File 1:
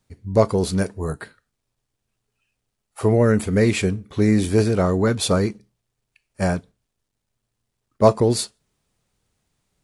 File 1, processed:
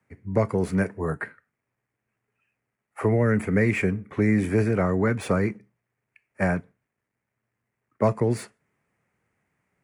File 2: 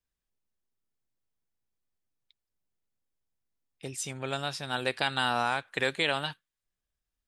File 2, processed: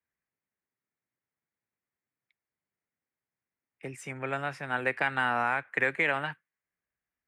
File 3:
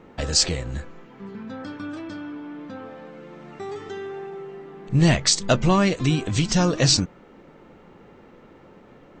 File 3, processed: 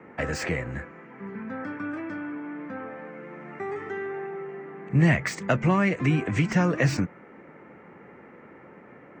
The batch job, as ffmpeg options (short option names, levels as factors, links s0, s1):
-filter_complex "[0:a]highpass=110,highshelf=f=2800:t=q:w=3:g=-10.5,acrossover=split=170|3000[s0][s1][s2];[s1]acompressor=threshold=0.0794:ratio=3[s3];[s0][s3][s2]amix=inputs=3:normalize=0,acrossover=split=190|3300[s4][s5][s6];[s6]asoftclip=type=tanh:threshold=0.0168[s7];[s4][s5][s7]amix=inputs=3:normalize=0"